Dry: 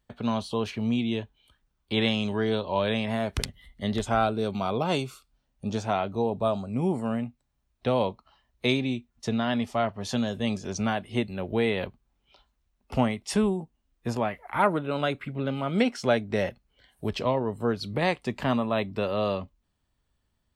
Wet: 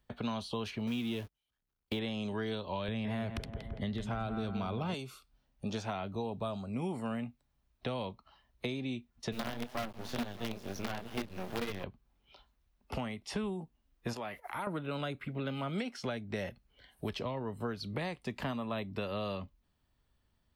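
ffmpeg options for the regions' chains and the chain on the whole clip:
ffmpeg -i in.wav -filter_complex "[0:a]asettb=1/sr,asplit=3[link_01][link_02][link_03];[link_01]atrim=end=0.874[link_04];[link_02]atrim=start=0.87:end=1.99,asetpts=PTS-STARTPTS,afade=type=in:duration=0.004:curve=qsin,afade=type=out:start_time=1.116:duration=0.004:curve=qsin,aeval=exprs='val(0)+0.5*0.0119*sgn(val(0))':channel_layout=same,agate=range=-43dB:threshold=-38dB:ratio=16:release=100:detection=peak[link_05];[link_03]atrim=start=1.986[link_06];[link_04][link_05]acrossfade=duration=0.004:curve1=hsin:curve2=qsin[link_07];[link_07][link_06]acrossfade=duration=0.004:curve1=qsin:curve2=hsin,asettb=1/sr,asplit=3[link_08][link_09][link_10];[link_08]atrim=end=2.884[link_11];[link_09]atrim=start=2.88:end=4.94,asetpts=PTS-STARTPTS,afade=type=in:duration=0.004:curve=qsin,afade=type=out:start_time=2.056:duration=0.004:curve=qsin,bass=frequency=250:gain=14,treble=frequency=4000:gain=-6,asplit=2[link_12][link_13];[link_13]adelay=168,lowpass=frequency=2000:poles=1,volume=-10dB,asplit=2[link_14][link_15];[link_15]adelay=168,lowpass=frequency=2000:poles=1,volume=0.53,asplit=2[link_16][link_17];[link_17]adelay=168,lowpass=frequency=2000:poles=1,volume=0.53,asplit=2[link_18][link_19];[link_19]adelay=168,lowpass=frequency=2000:poles=1,volume=0.53,asplit=2[link_20][link_21];[link_21]adelay=168,lowpass=frequency=2000:poles=1,volume=0.53,asplit=2[link_22][link_23];[link_23]adelay=168,lowpass=frequency=2000:poles=1,volume=0.53[link_24];[link_12][link_14][link_16][link_18][link_20][link_22][link_24]amix=inputs=7:normalize=0,atrim=end_sample=90846[link_25];[link_10]atrim=start=4.936[link_26];[link_11][link_25]acrossfade=duration=0.004:curve1=hsin:curve2=qsin[link_27];[link_27][link_26]acrossfade=duration=0.004:curve1=qsin:curve2=hsin,asettb=1/sr,asplit=3[link_28][link_29][link_30];[link_28]atrim=end=9.324[link_31];[link_29]atrim=start=9.32:end=11.84,asetpts=PTS-STARTPTS,afade=type=in:duration=0.004:curve=qsin,afade=type=out:start_time=2.516:duration=0.004:curve=qsin,aecho=1:1:188|621:0.106|0.133,atrim=end_sample=111132,flanger=delay=20:depth=7.2:speed=2.1,acrusher=bits=5:dc=4:mix=0:aa=0.000001[link_32];[link_30]atrim=start=11.836[link_33];[link_31][link_32]acrossfade=duration=0.004:curve1=hsin:curve2=qsin[link_34];[link_34][link_33]acrossfade=duration=0.004:curve1=qsin:curve2=hsin,asettb=1/sr,asplit=3[link_35][link_36][link_37];[link_35]atrim=end=14.134[link_38];[link_36]atrim=start=14.13:end=14.67,asetpts=PTS-STARTPTS,afade=type=in:duration=0.004:curve=qsin,afade=type=out:start_time=0.536:duration=0.004:curve=qsin,agate=range=-11dB:threshold=-52dB:ratio=16:release=100:detection=peak,bass=frequency=250:gain=-6,treble=frequency=4000:gain=11,acompressor=threshold=-37dB:ratio=2:attack=3.2:release=140:knee=1:detection=peak[link_39];[link_37]atrim=start=14.666[link_40];[link_38][link_39]acrossfade=duration=0.004:curve1=hsin:curve2=qsin[link_41];[link_41][link_40]acrossfade=duration=0.004:curve1=qsin:curve2=hsin,equalizer=frequency=7600:width=1.9:gain=-5,alimiter=limit=-16.5dB:level=0:latency=1:release=458,acrossover=split=250|1200|5800[link_42][link_43][link_44][link_45];[link_42]acompressor=threshold=-40dB:ratio=4[link_46];[link_43]acompressor=threshold=-40dB:ratio=4[link_47];[link_44]acompressor=threshold=-43dB:ratio=4[link_48];[link_45]acompressor=threshold=-55dB:ratio=4[link_49];[link_46][link_47][link_48][link_49]amix=inputs=4:normalize=0" out.wav

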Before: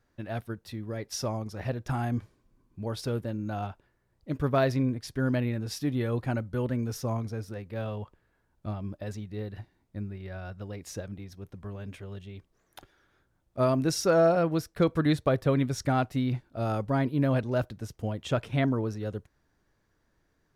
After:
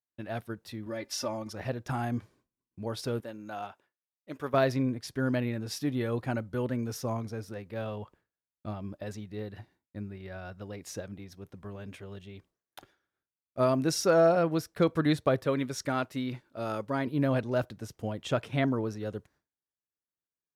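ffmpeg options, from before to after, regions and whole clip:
ffmpeg -i in.wav -filter_complex "[0:a]asettb=1/sr,asplit=3[link_01][link_02][link_03];[link_01]atrim=end=0.864[link_04];[link_02]atrim=start=0.86:end=1.53,asetpts=PTS-STARTPTS,afade=type=in:duration=0.004:curve=qsin,afade=type=out:start_time=0.666:duration=0.004:curve=qsin,equalizer=frequency=2200:width=0.38:gain=4.5,aecho=1:1:3.4:0.94,atrim=end_sample=29547,acompressor=threshold=-38dB:ratio=1.5:attack=3.2:release=140:knee=1:detection=peak[link_05];[link_03]atrim=start=1.526[link_06];[link_04][link_05]acrossfade=duration=0.004:curve1=hsin:curve2=qsin[link_07];[link_07][link_06]acrossfade=duration=0.004:curve1=qsin:curve2=hsin,asettb=1/sr,asplit=3[link_08][link_09][link_10];[link_08]atrim=end=3.204[link_11];[link_09]atrim=start=3.2:end=4.54,asetpts=PTS-STARTPTS,afade=type=in:duration=0.004:curve=qsin,afade=type=out:start_time=1.336:duration=0.004:curve=qsin,highpass=frequency=580:poles=1,equalizer=frequency=4400:width=6.8:gain=-4[link_12];[link_10]atrim=start=4.536[link_13];[link_11][link_12]acrossfade=duration=0.004:curve1=hsin:curve2=qsin[link_14];[link_14][link_13]acrossfade=duration=0.004:curve1=qsin:curve2=hsin,asettb=1/sr,asplit=3[link_15][link_16][link_17];[link_15]atrim=end=15.444[link_18];[link_16]atrim=start=15.44:end=17.07,asetpts=PTS-STARTPTS,afade=type=in:duration=0.004:curve=qsin,afade=type=out:start_time=1.626:duration=0.004:curve=qsin,equalizer=frequency=70:width=0.38:gain=-8,bandreject=frequency=740:width=5.5[link_19];[link_17]atrim=start=17.066[link_20];[link_18][link_19]acrossfade=duration=0.004:curve1=hsin:curve2=qsin[link_21];[link_21][link_20]acrossfade=duration=0.004:curve1=qsin:curve2=hsin,highpass=frequency=150:poles=1,agate=range=-33dB:threshold=-56dB:ratio=3:detection=peak" out.wav

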